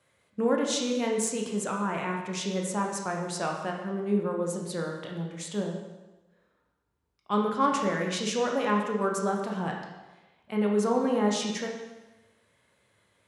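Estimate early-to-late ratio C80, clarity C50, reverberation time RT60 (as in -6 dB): 5.5 dB, 3.5 dB, 1.1 s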